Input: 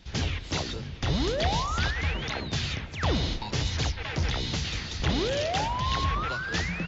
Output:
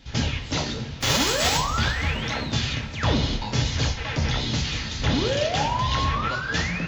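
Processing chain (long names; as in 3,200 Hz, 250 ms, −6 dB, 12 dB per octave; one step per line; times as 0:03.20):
0:01.00–0:01.56: spectral envelope flattened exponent 0.3
coupled-rooms reverb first 0.39 s, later 2.7 s, from −19 dB, DRR 2 dB
level +2 dB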